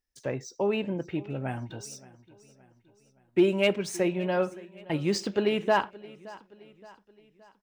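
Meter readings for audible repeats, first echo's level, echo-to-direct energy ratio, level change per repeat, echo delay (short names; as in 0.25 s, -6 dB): 3, -20.5 dB, -19.5 dB, -6.5 dB, 0.571 s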